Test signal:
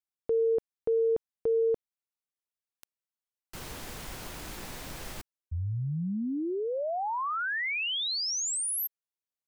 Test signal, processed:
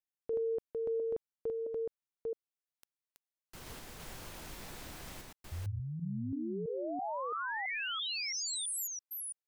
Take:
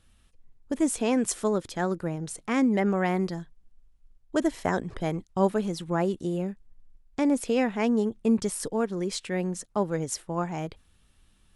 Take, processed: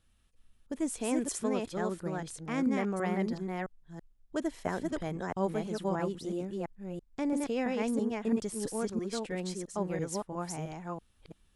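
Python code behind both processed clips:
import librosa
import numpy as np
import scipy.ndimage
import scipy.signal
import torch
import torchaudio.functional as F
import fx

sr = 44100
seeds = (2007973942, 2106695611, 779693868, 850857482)

y = fx.reverse_delay(x, sr, ms=333, wet_db=-2)
y = y * librosa.db_to_amplitude(-8.0)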